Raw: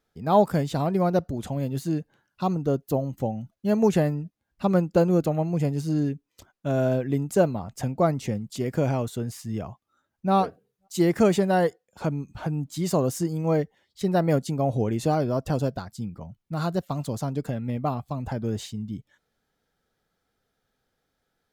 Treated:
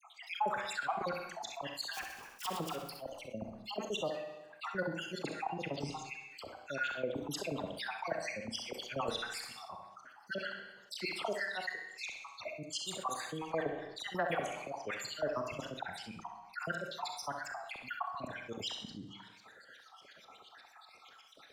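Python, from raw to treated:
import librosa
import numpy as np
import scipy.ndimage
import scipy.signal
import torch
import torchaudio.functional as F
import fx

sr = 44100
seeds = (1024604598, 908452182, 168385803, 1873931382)

y = fx.spec_dropout(x, sr, seeds[0], share_pct=66)
y = fx.graphic_eq(y, sr, hz=(500, 1000, 4000), db=(-12, -7, -9), at=(15.27, 15.92))
y = fx.auto_swell(y, sr, attack_ms=114.0)
y = fx.filter_lfo_bandpass(y, sr, shape='saw_up', hz=8.3, low_hz=770.0, high_hz=4100.0, q=2.2)
y = fx.sample_hold(y, sr, seeds[1], rate_hz=4200.0, jitter_pct=20, at=(1.92, 2.87), fade=0.02)
y = fx.dispersion(y, sr, late='lows', ms=49.0, hz=1800.0)
y = 10.0 ** (-26.0 / 20.0) * np.tanh(y / 10.0 ** (-26.0 / 20.0))
y = fx.room_flutter(y, sr, wall_m=11.3, rt60_s=0.34)
y = fx.rev_schroeder(y, sr, rt60_s=0.6, comb_ms=28, drr_db=9.5)
y = fx.env_flatten(y, sr, amount_pct=50)
y = F.gain(torch.from_numpy(y), 4.5).numpy()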